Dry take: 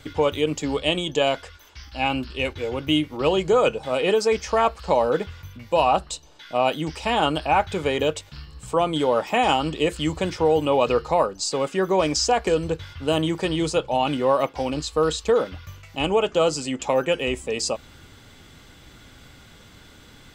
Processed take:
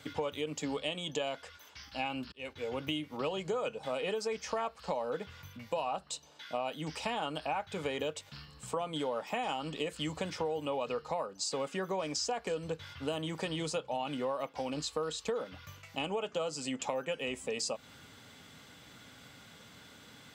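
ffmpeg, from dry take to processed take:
-filter_complex "[0:a]asplit=2[a][b];[a]atrim=end=2.32,asetpts=PTS-STARTPTS,afade=t=out:st=2.316:d=0.004:c=hsin[c];[b]atrim=start=2.32,asetpts=PTS-STARTPTS,afade=t=in:d=0.49[d];[c][d]concat=n=2:v=0:a=1,highpass=140,equalizer=f=350:t=o:w=0.22:g=-10.5,acompressor=threshold=-28dB:ratio=5,volume=-4.5dB"

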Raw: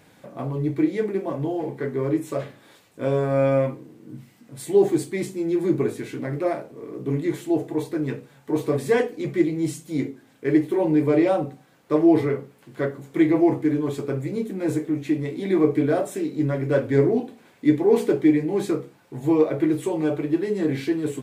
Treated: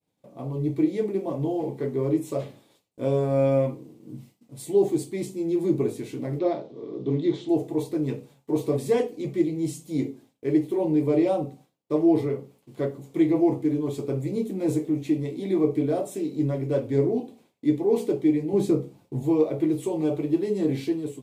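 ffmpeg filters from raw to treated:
-filter_complex "[0:a]asettb=1/sr,asplit=3[a][b][c];[a]atrim=end=6.394[d];[b]atrim=start=6.39:end=7.49,asetpts=PTS-STARTPTS,afade=t=in:d=0.004:c=qsin,afade=t=out:st=1.096:d=0.004:c=qsin,highpass=100,equalizer=f=370:t=q:w=4:g=3,equalizer=f=2.5k:t=q:w=4:g=-4,equalizer=f=3.6k:t=q:w=4:g=9,lowpass=f=5.4k:w=0.5412,lowpass=f=5.4k:w=1.3066[e];[c]atrim=start=7.486[f];[d][e]acrossfade=d=0.004:c1=hsin:c2=qsin[g];[g][f]acrossfade=d=0.004:c1=qsin:c2=hsin,asettb=1/sr,asplit=3[h][i][j];[h]atrim=end=18.534[k];[i]atrim=start=18.53:end=19.23,asetpts=PTS-STARTPTS,afade=t=in:d=0.004:c=qsin,afade=t=out:st=0.696:d=0.004:c=qsin,lowshelf=f=370:g=9.5[l];[j]atrim=start=19.226[m];[k][l]acrossfade=d=0.004:c1=hsin:c2=qsin[n];[n][m]acrossfade=d=0.004:c1=qsin:c2=hsin,agate=range=-33dB:threshold=-44dB:ratio=3:detection=peak,equalizer=f=1.6k:t=o:w=0.86:g=-13,dynaudnorm=f=170:g=5:m=9.5dB,volume=-9dB"

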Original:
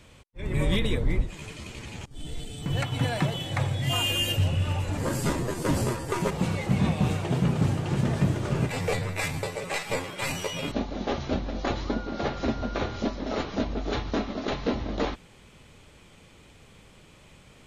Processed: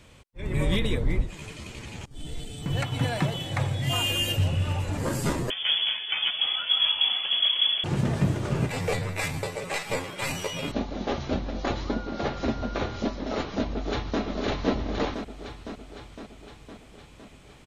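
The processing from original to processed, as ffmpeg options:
-filter_complex "[0:a]asettb=1/sr,asplit=3[a][b][c];[a]atrim=end=5.504[d];[b]atrim=start=5.5:end=7.84,asetpts=PTS-STARTPTS,afade=t=in:d=0.004:c=qsin,afade=t=out:st=2.336:d=0.004:c=qsin,lowpass=f=3k:t=q:w=0.5098,lowpass=f=3k:t=q:w=0.6013,lowpass=f=3k:t=q:w=0.9,lowpass=f=3k:t=q:w=2.563,afreqshift=-3500[e];[c]atrim=start=7.836[f];[d][e]acrossfade=d=0.004:c1=hsin:c2=qsin[g];[g][f]acrossfade=d=0.004:c1=qsin:c2=hsin,asplit=2[h][i];[i]afade=t=in:st=13.73:d=0.01,afade=t=out:st=14.22:d=0.01,aecho=0:1:510|1020|1530|2040|2550|3060|3570|4080|4590|5100:0.707946|0.460165|0.299107|0.19442|0.126373|0.0821423|0.0533925|0.0347051|0.0225583|0.0146629[j];[h][j]amix=inputs=2:normalize=0"

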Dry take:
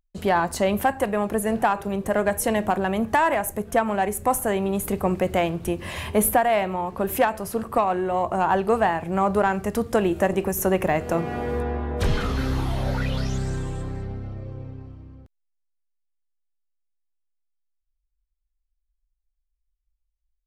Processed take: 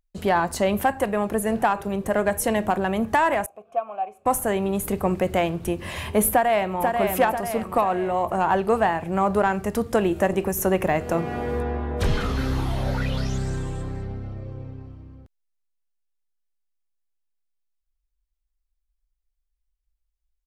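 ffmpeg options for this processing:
-filter_complex "[0:a]asettb=1/sr,asplit=3[a][b][c];[a]atrim=end=3.464[d];[b]atrim=start=3.46:end=4.26,asetpts=PTS-STARTPTS,afade=t=in:d=0.004:c=qsin,afade=t=out:st=0.796:d=0.004:c=qsin,asplit=3[e][f][g];[e]bandpass=f=730:t=q:w=8,volume=0dB[h];[f]bandpass=f=1.09k:t=q:w=8,volume=-6dB[i];[g]bandpass=f=2.44k:t=q:w=8,volume=-9dB[j];[h][i][j]amix=inputs=3:normalize=0[k];[c]atrim=start=4.256[l];[d][k]acrossfade=d=0.004:c1=hsin:c2=qsin[m];[m][l]acrossfade=d=0.004:c1=qsin:c2=hsin,asplit=2[n][o];[o]afade=t=in:st=6.31:d=0.01,afade=t=out:st=6.82:d=0.01,aecho=0:1:490|980|1470|1960|2450|2940:0.630957|0.315479|0.157739|0.0788697|0.0394348|0.0197174[p];[n][p]amix=inputs=2:normalize=0"

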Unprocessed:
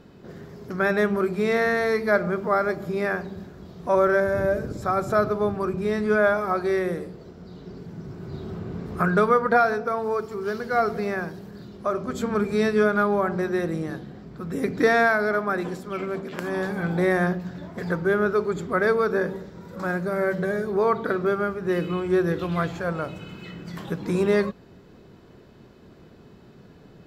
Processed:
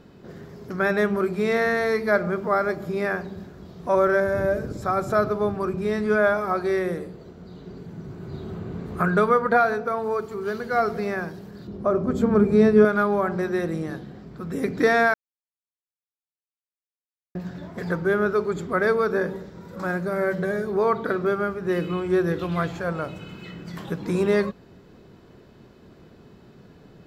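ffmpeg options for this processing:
-filter_complex "[0:a]asettb=1/sr,asplit=3[a][b][c];[a]atrim=end=6.984[d];[b]atrim=start=6.98:end=10.72,asetpts=PTS-STARTPTS,afade=t=in:d=0.004:c=qsin,afade=t=out:st=3.736:d=0.004:c=qsin,bandreject=f=5.3k:w=7.2[e];[c]atrim=start=10.716[f];[d][e]acrossfade=d=0.004:c1=hsin:c2=qsin[g];[g][f]acrossfade=d=0.004:c1=qsin:c2=hsin,asettb=1/sr,asplit=3[h][i][j];[h]atrim=end=11.674[k];[i]atrim=start=11.67:end=12.85,asetpts=PTS-STARTPTS,afade=t=in:d=0.004:c=qsin,afade=t=out:st=1.176:d=0.004:c=qsin,tiltshelf=f=1.1k:g=7.5[l];[j]atrim=start=12.846[m];[k][l]acrossfade=d=0.004:c1=hsin:c2=qsin[n];[n][m]acrossfade=d=0.004:c1=qsin:c2=hsin,asplit=3[o][p][q];[o]atrim=end=15.14,asetpts=PTS-STARTPTS,afade=t=out:st=15.136:d=0.004:c=hsin[r];[p]atrim=start=15.14:end=17.35,asetpts=PTS-STARTPTS,volume=0[s];[q]atrim=start=17.35,asetpts=PTS-STARTPTS,afade=t=in:d=0.004:c=hsin[t];[r][s][t]concat=n=3:v=0:a=1"

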